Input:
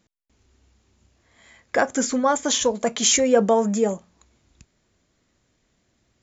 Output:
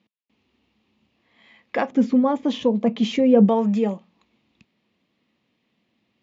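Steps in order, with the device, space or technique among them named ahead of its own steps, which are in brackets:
0:01.91–0:03.49: tilt shelving filter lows +9 dB, about 660 Hz
kitchen radio (loudspeaker in its box 190–4,000 Hz, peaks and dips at 210 Hz +6 dB, 390 Hz −4 dB, 630 Hz −5 dB, 1,500 Hz −10 dB, 2,700 Hz +5 dB)

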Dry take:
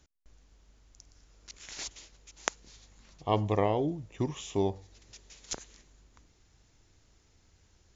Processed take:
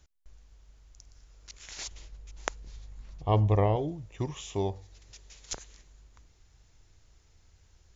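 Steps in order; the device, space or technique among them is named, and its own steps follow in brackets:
low shelf boost with a cut just above (low-shelf EQ 82 Hz +7.5 dB; parametric band 250 Hz −6 dB 1.1 octaves)
0:01.91–0:03.76: spectral tilt −2 dB per octave

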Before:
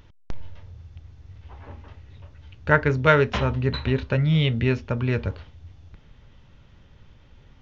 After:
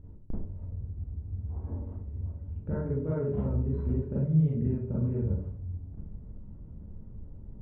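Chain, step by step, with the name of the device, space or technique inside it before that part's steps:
television next door (downward compressor 3 to 1, threshold −33 dBFS, peak gain reduction 16 dB; low-pass filter 320 Hz 12 dB per octave; convolution reverb RT60 0.50 s, pre-delay 31 ms, DRR −8 dB)

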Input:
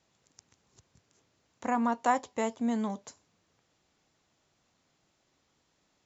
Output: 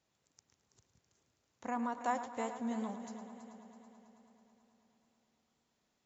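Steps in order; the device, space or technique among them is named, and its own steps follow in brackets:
multi-head tape echo (echo machine with several playback heads 109 ms, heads first and third, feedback 67%, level −12.5 dB; tape wow and flutter 24 cents)
level −8.5 dB

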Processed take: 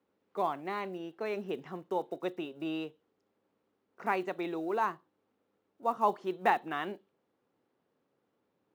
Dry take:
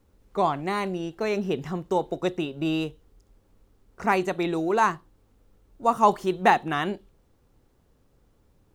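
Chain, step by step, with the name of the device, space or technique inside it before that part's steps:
0:04.60–0:06.32: dynamic equaliser 2,100 Hz, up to −4 dB, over −33 dBFS, Q 1
early digital voice recorder (band-pass filter 250–3,400 Hz; one scale factor per block 7 bits)
high-pass filter 87 Hz
level −8 dB

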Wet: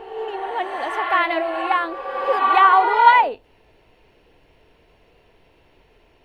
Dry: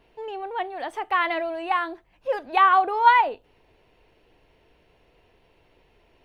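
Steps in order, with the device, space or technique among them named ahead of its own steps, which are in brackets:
reverse reverb (reversed playback; convolution reverb RT60 2.1 s, pre-delay 45 ms, DRR 5 dB; reversed playback)
level +3.5 dB

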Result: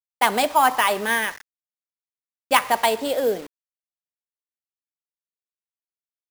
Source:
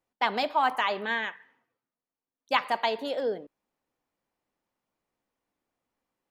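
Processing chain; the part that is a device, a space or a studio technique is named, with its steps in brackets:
early 8-bit sampler (sample-rate reduction 12,000 Hz, jitter 0%; bit reduction 8 bits)
level +7.5 dB

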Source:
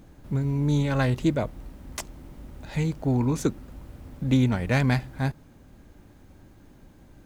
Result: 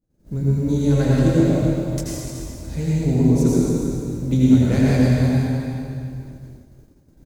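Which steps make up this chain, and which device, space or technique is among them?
flat-topped bell 1,600 Hz −9 dB 2.6 octaves
double-tracking delay 24 ms −13 dB
cave (single-tap delay 293 ms −10 dB; convolution reverb RT60 2.5 s, pre-delay 76 ms, DRR −6.5 dB)
downward expander −35 dBFS

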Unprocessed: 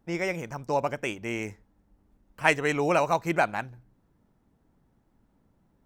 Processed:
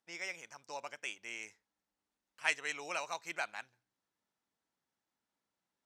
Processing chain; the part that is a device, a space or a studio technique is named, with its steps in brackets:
piezo pickup straight into a mixer (low-pass filter 5,500 Hz 12 dB per octave; first difference)
level +2 dB

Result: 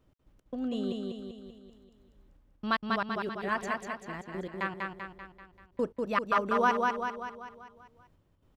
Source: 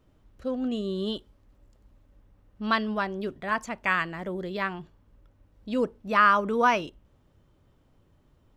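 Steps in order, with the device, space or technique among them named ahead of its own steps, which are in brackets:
trance gate with a delay (gate pattern "x.x.xxx..x." 114 BPM −60 dB; repeating echo 194 ms, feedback 53%, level −3 dB)
level −4 dB

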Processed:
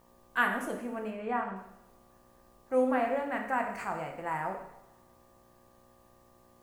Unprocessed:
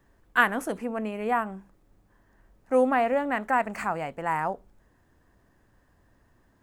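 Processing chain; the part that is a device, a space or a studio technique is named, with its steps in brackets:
video cassette with head-switching buzz (hum with harmonics 60 Hz, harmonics 20, −56 dBFS −1 dB per octave; white noise bed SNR 37 dB)
0:01.10–0:01.56: high-frequency loss of the air 97 metres
coupled-rooms reverb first 0.77 s, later 2.6 s, from −27 dB, DRR 2 dB
level −8 dB

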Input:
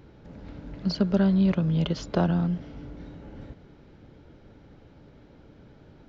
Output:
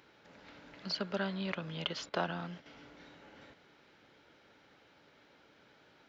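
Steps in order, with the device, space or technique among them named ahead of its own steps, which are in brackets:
filter by subtraction (in parallel: low-pass filter 2,100 Hz 12 dB per octave + polarity inversion)
0:02.09–0:02.66: on the sum: noise gate −49 dBFS, range −9 dB
dynamic equaliser 6,100 Hz, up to −5 dB, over −56 dBFS, Q 1.1

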